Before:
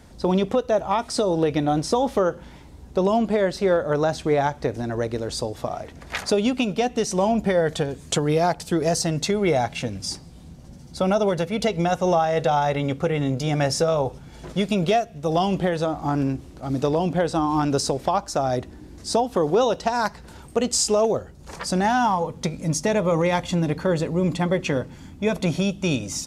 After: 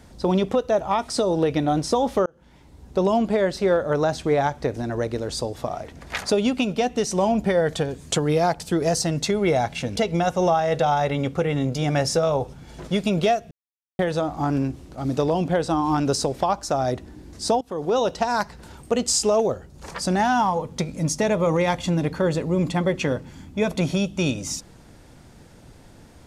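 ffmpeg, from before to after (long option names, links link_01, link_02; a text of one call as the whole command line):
ffmpeg -i in.wav -filter_complex "[0:a]asplit=6[link_01][link_02][link_03][link_04][link_05][link_06];[link_01]atrim=end=2.26,asetpts=PTS-STARTPTS,afade=type=out:start_time=2.256:duration=0.004:curve=hsin[link_07];[link_02]atrim=start=2.26:end=9.962,asetpts=PTS-STARTPTS,afade=type=in:duration=0.72[link_08];[link_03]atrim=start=11.608:end=15.16,asetpts=PTS-STARTPTS,afade=type=out:start_time=3.548:duration=0.004:curve=hsin[link_09];[link_04]atrim=start=15.16:end=15.64,asetpts=PTS-STARTPTS,volume=0[link_10];[link_05]atrim=start=15.64:end=19.26,asetpts=PTS-STARTPTS,afade=type=in:duration=0.004:curve=hsin,afade=type=out:start_time=3.616:duration=0.004:curve=hsin:silence=0.1[link_11];[link_06]atrim=start=19.26,asetpts=PTS-STARTPTS,afade=type=in:duration=0.45:silence=0.1[link_12];[link_07][link_08]concat=n=2:v=0:a=1[link_13];[link_09][link_10][link_11][link_12]concat=n=4:v=0:a=1[link_14];[link_13][link_14]acrossfade=duration=0.004:curve1=hsin:curve2=hsin" out.wav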